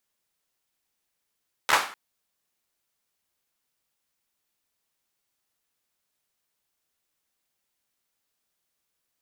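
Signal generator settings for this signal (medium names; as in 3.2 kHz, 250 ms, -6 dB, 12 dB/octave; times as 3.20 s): hand clap length 0.25 s, apart 13 ms, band 1.2 kHz, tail 0.41 s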